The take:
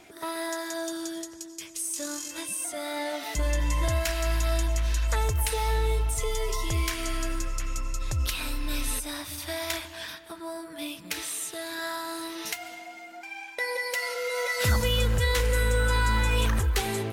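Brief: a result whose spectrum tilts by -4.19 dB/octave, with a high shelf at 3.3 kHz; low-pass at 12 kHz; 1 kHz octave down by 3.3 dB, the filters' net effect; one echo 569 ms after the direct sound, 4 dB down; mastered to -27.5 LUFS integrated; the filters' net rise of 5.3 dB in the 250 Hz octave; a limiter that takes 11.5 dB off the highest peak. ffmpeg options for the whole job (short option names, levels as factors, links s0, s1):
-af "lowpass=12000,equalizer=f=250:t=o:g=7.5,equalizer=f=1000:t=o:g=-4,highshelf=f=3300:g=-3.5,alimiter=level_in=1.12:limit=0.0631:level=0:latency=1,volume=0.891,aecho=1:1:569:0.631,volume=1.88"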